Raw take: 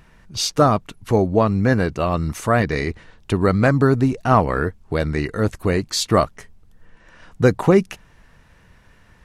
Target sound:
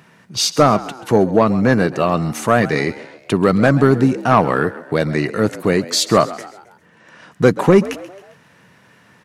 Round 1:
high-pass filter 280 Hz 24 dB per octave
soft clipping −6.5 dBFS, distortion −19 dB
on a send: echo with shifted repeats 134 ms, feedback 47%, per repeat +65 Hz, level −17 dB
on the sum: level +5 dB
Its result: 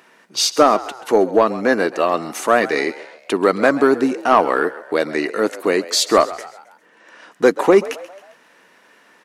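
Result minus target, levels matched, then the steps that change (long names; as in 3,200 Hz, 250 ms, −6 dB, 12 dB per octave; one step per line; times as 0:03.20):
125 Hz band −17.0 dB
change: high-pass filter 130 Hz 24 dB per octave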